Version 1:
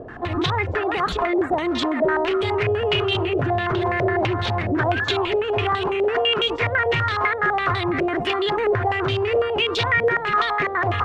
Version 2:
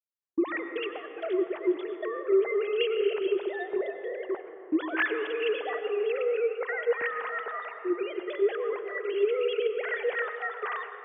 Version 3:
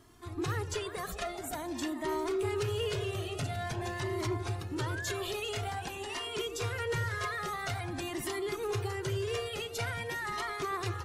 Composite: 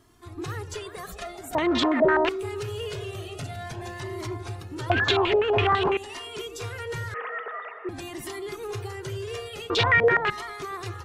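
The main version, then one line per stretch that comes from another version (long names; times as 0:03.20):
3
0:01.55–0:02.29: punch in from 1
0:04.90–0:05.97: punch in from 1
0:07.14–0:07.89: punch in from 2
0:09.70–0:10.30: punch in from 1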